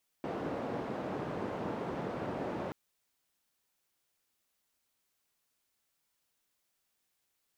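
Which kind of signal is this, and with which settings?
noise band 140–590 Hz, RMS -37.5 dBFS 2.48 s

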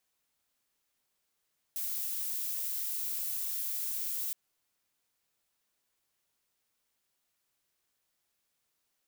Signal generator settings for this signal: noise violet, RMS -35 dBFS 2.57 s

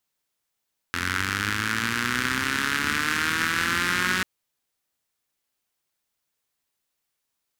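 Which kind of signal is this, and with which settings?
four-cylinder engine model, changing speed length 3.29 s, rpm 2600, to 5600, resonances 100/230/1500 Hz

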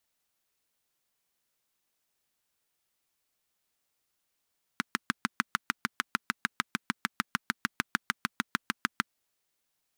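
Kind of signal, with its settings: single-cylinder engine model, steady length 4.28 s, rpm 800, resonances 230/1400 Hz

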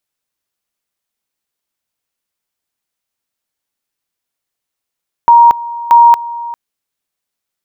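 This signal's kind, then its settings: two-level tone 941 Hz -1.5 dBFS, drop 18 dB, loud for 0.23 s, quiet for 0.40 s, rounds 2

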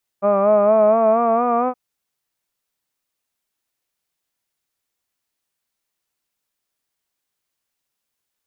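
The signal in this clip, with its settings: formant-synthesis vowel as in hud, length 1.52 s, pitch 197 Hz, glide +4 st, vibrato 4.3 Hz, vibrato depth 0.55 st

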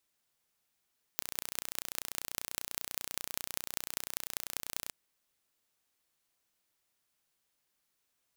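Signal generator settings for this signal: pulse train 30.2/s, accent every 6, -5 dBFS 3.73 s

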